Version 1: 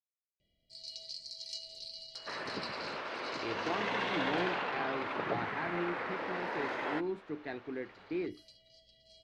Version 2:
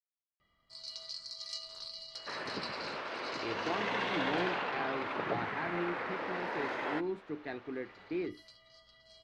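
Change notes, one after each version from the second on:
first sound: remove Chebyshev band-stop 630–2400 Hz, order 3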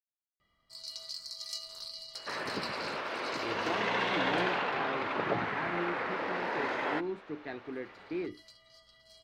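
first sound: remove LPF 5400 Hz 12 dB/oct; second sound +3.5 dB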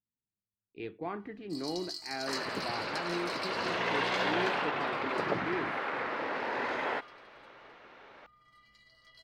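speech: entry -2.65 s; first sound: entry +0.80 s

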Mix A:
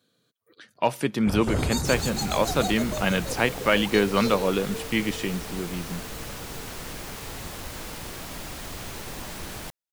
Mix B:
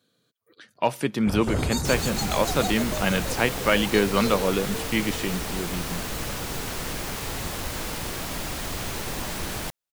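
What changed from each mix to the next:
second sound +5.5 dB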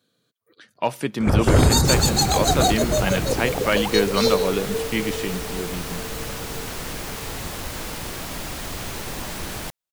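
first sound +11.0 dB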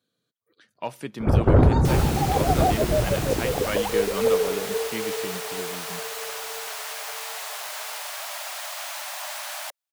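speech -8.5 dB; first sound: add LPF 1100 Hz 12 dB/oct; second sound: add brick-wall FIR high-pass 560 Hz

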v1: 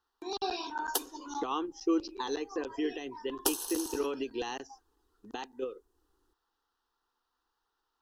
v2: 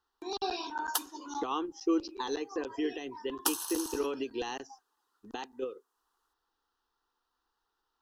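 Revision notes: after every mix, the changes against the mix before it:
background: add resonant high-pass 1100 Hz, resonance Q 1.9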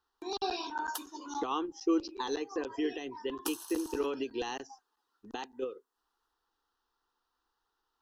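background -8.5 dB

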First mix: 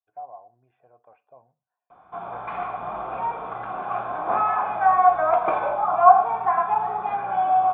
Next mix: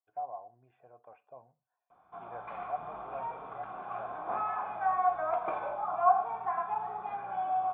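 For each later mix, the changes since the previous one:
background -11.5 dB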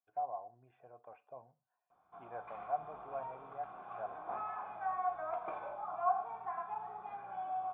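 background -8.0 dB

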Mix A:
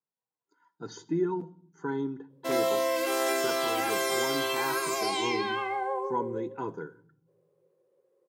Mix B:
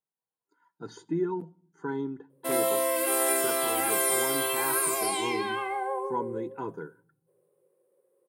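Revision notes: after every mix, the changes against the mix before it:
speech: send -7.0 dB; master: add resonant high shelf 7700 Hz +8.5 dB, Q 3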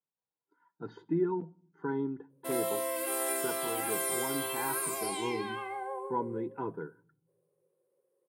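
speech: add air absorption 350 m; background -7.0 dB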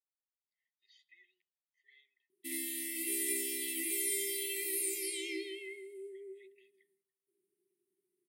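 speech: add elliptic high-pass 1000 Hz, stop band 70 dB; master: add brick-wall FIR band-stop 410–1800 Hz

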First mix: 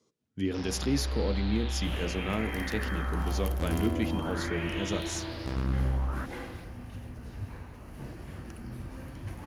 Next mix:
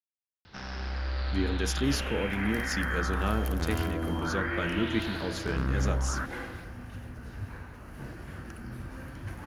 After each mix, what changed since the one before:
speech: entry +0.95 s; master: add bell 1500 Hz +8 dB 0.56 oct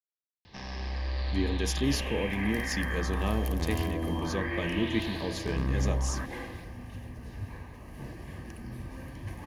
master: add Butterworth band-stop 1400 Hz, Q 3.4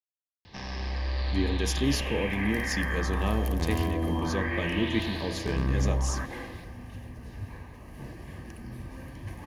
speech: send +10.5 dB; first sound: send +11.5 dB

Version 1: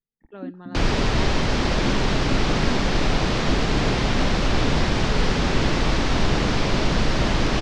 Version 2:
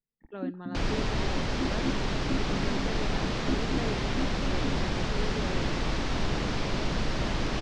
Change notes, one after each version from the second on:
second sound -8.5 dB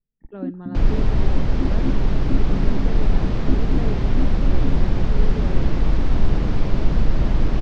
master: add tilt -3 dB/oct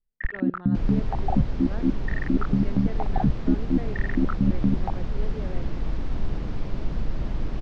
speech: add low shelf 320 Hz -11 dB; first sound: remove vocal tract filter u; second sound -9.5 dB

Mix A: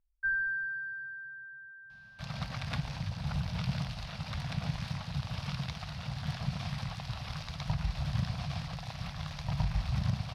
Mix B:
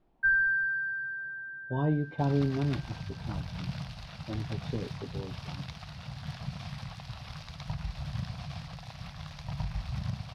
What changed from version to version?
speech: unmuted; first sound +6.0 dB; second sound -3.5 dB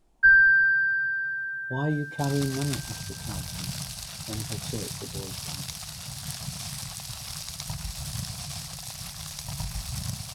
first sound +6.5 dB; master: remove air absorption 320 m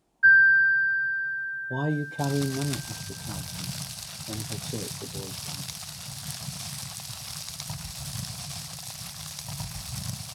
master: add HPF 88 Hz

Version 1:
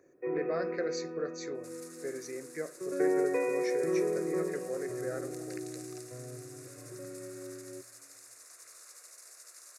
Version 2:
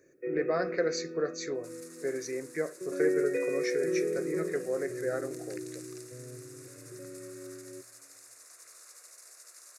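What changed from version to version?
speech +5.5 dB; first sound: add Chebyshev band-stop 520–1500 Hz, order 2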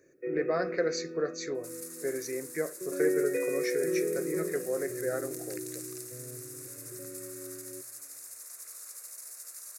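second sound: remove air absorption 61 m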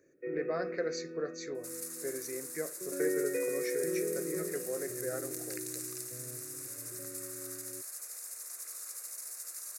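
speech -5.5 dB; first sound: send off; second sound: send +11.0 dB

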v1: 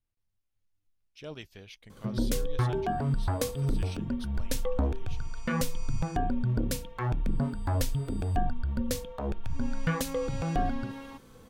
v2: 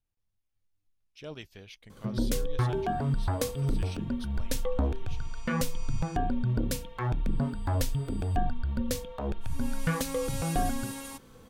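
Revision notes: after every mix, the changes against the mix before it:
second sound: remove air absorption 270 m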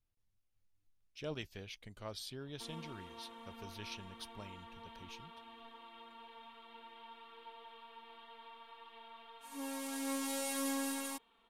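first sound: muted; reverb: off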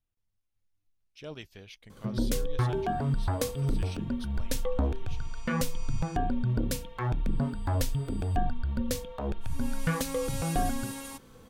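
first sound: unmuted; reverb: on, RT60 0.45 s

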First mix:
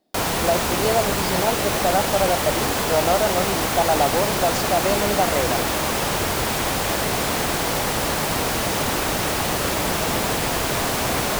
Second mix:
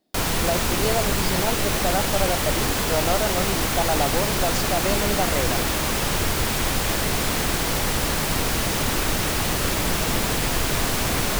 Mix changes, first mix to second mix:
background: remove HPF 80 Hz 6 dB/oct; master: add bell 710 Hz -5 dB 1.6 oct

